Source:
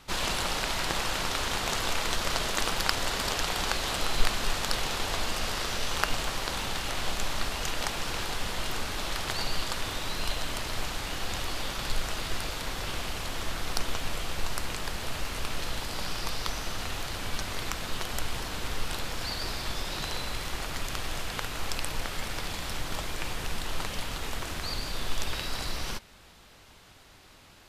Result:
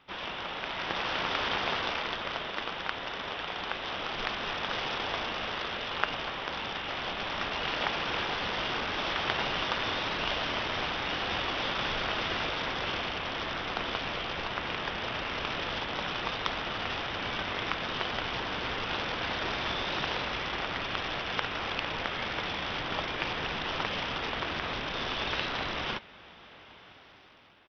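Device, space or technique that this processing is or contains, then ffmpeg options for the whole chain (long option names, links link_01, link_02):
Bluetooth headset: -af "highpass=frequency=230:poles=1,dynaudnorm=framelen=300:gausssize=7:maxgain=11.5dB,aresample=8000,aresample=44100,volume=-5.5dB" -ar 44100 -c:a sbc -b:a 64k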